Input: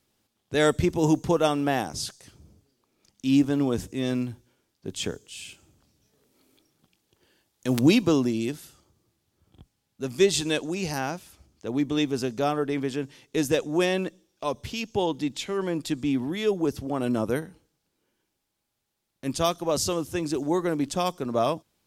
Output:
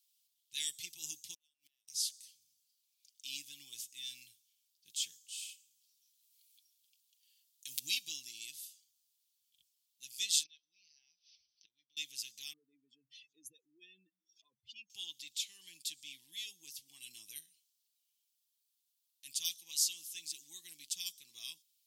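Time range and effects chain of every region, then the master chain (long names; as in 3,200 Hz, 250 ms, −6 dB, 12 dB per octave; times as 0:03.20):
0:01.34–0:01.88: mu-law and A-law mismatch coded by A + gate with flip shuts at −20 dBFS, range −40 dB
0:10.43–0:11.97: gate with flip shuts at −26 dBFS, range −25 dB + linear-phase brick-wall low-pass 6,200 Hz
0:12.53–0:14.90: expanding power law on the bin magnitudes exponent 2.7 + upward compression, threshold −38 dBFS
whole clip: inverse Chebyshev high-pass filter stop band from 1,500 Hz, stop band 40 dB; high-shelf EQ 12,000 Hz +10 dB; comb filter 6.2 ms, depth 41%; level −4.5 dB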